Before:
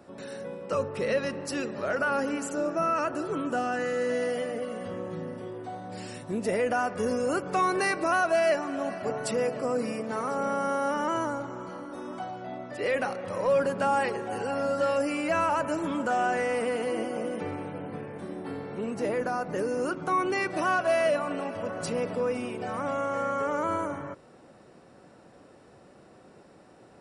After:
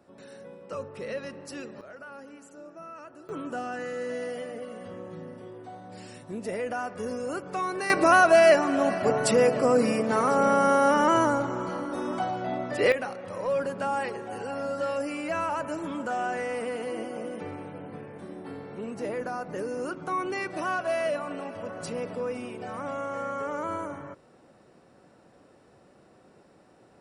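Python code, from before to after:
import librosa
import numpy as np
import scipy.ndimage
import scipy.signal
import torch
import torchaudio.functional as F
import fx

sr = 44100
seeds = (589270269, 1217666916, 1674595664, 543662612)

y = fx.gain(x, sr, db=fx.steps((0.0, -7.5), (1.81, -17.0), (3.29, -5.0), (7.9, 7.0), (12.92, -3.5)))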